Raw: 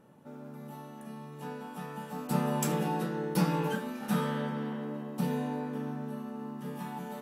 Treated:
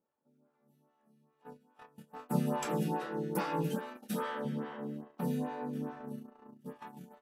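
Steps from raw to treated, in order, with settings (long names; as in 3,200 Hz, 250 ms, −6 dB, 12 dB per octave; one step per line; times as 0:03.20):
noise gate −37 dBFS, range −23 dB
0:03.96–0:04.45: parametric band 140 Hz −14 dB 1 octave
phaser with staggered stages 2.4 Hz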